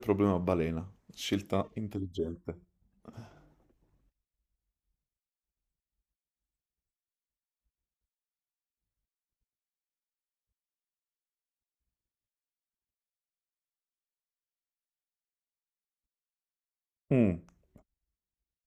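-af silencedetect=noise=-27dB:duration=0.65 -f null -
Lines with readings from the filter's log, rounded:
silence_start: 2.50
silence_end: 17.11 | silence_duration: 14.61
silence_start: 17.33
silence_end: 18.67 | silence_duration: 1.33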